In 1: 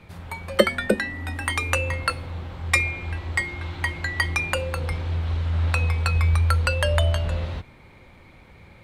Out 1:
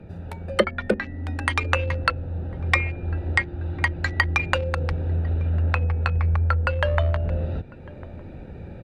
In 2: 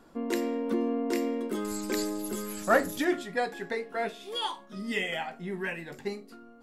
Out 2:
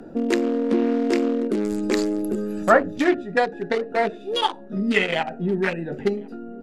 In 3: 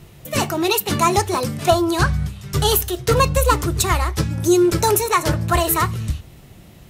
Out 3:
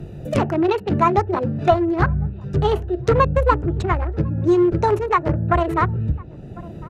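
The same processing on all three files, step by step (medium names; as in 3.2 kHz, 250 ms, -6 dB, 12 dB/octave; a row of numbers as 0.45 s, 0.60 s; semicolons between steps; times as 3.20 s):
local Wiener filter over 41 samples; low-pass that closes with the level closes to 1.7 kHz, closed at -18.5 dBFS; bass shelf 350 Hz -4 dB; gain riding within 4 dB 2 s; echo from a far wall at 180 m, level -29 dB; three bands compressed up and down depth 40%; peak normalisation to -2 dBFS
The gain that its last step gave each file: +4.0 dB, +11.5 dB, +3.0 dB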